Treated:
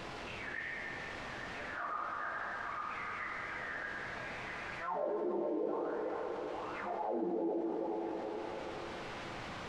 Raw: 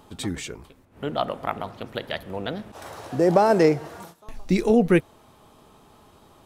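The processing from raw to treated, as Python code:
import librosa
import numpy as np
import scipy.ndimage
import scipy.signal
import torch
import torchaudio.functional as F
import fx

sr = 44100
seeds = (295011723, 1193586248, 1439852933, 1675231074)

y = fx.cycle_switch(x, sr, every=2, mode='muted')
y = scipy.signal.sosfilt(scipy.signal.ellip(4, 1.0, 60, 190.0, 'highpass', fs=sr, output='sos'), y)
y = fx.bass_treble(y, sr, bass_db=2, treble_db=-12)
y = fx.transient(y, sr, attack_db=-9, sustain_db=6)
y = fx.auto_wah(y, sr, base_hz=340.0, top_hz=3000.0, q=15.0, full_db=-18.5, direction='down')
y = fx.stretch_vocoder_free(y, sr, factor=1.5)
y = fx.quant_dither(y, sr, seeds[0], bits=10, dither='triangular')
y = fx.spacing_loss(y, sr, db_at_10k=39)
y = fx.echo_stepped(y, sr, ms=424, hz=690.0, octaves=0.7, feedback_pct=70, wet_db=-3.5)
y = fx.rev_plate(y, sr, seeds[1], rt60_s=2.5, hf_ratio=0.9, predelay_ms=0, drr_db=0.5)
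y = fx.env_flatten(y, sr, amount_pct=70)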